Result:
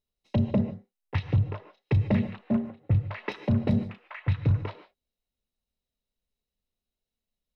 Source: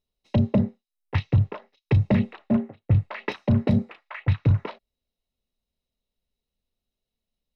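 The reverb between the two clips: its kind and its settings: non-linear reverb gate 0.17 s rising, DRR 11.5 dB; gain -4 dB

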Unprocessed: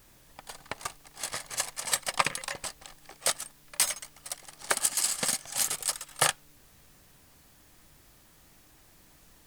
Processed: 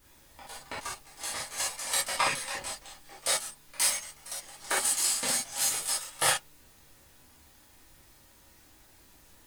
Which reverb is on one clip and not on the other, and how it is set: non-linear reverb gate 90 ms flat, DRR -8 dB; gain -8 dB

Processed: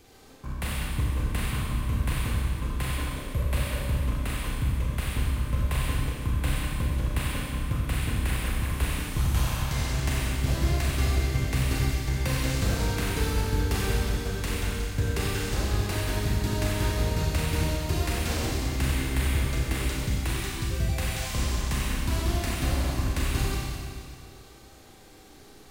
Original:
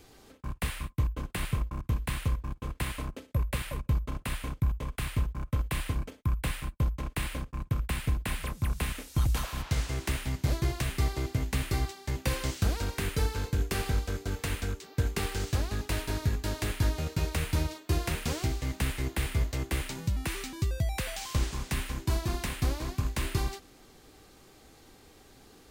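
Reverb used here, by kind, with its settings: Schroeder reverb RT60 2.2 s, combs from 30 ms, DRR -4 dB; gain -1 dB

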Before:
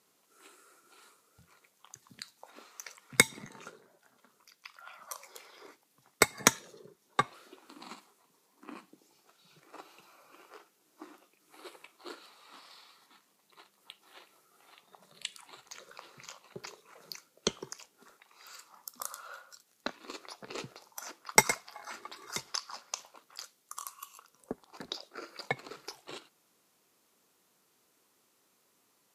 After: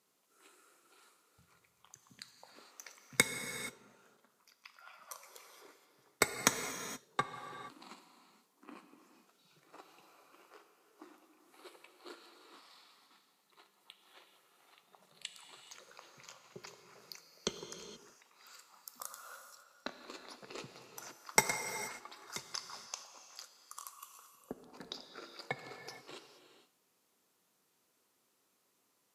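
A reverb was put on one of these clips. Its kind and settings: non-linear reverb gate 0.5 s flat, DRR 7 dB; gain -6 dB

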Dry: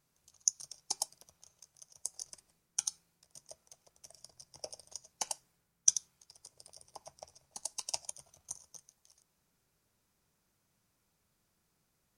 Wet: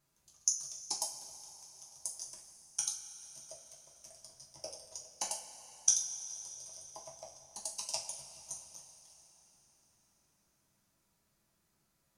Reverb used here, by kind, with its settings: two-slope reverb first 0.32 s, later 4.2 s, from -18 dB, DRR -2.5 dB; gain -3.5 dB

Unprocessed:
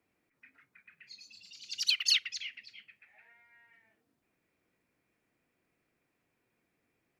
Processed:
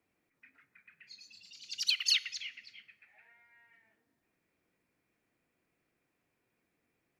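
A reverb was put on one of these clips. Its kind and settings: plate-style reverb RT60 2.6 s, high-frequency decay 0.35×, DRR 15.5 dB; gain -1.5 dB

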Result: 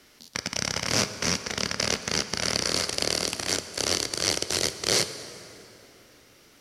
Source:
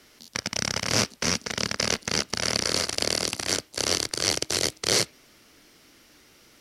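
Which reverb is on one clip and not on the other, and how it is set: plate-style reverb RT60 3.3 s, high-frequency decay 0.65×, DRR 10 dB; gain -1 dB

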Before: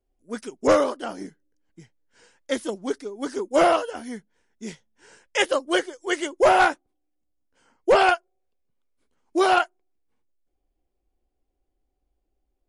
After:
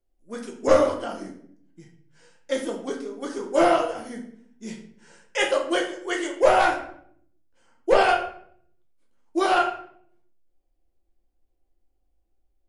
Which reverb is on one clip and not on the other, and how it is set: shoebox room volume 96 m³, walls mixed, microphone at 0.8 m; gain -4 dB

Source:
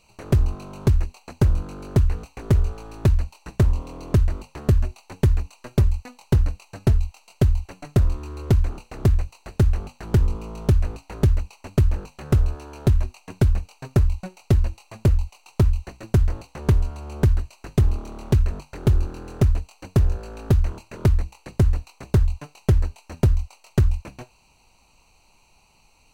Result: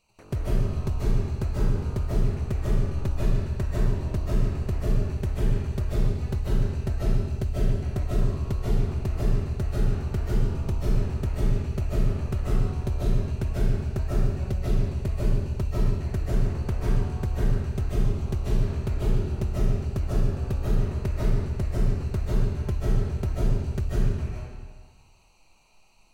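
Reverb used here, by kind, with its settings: digital reverb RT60 1.5 s, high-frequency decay 0.85×, pre-delay 0.11 s, DRR -8 dB; gain -11.5 dB

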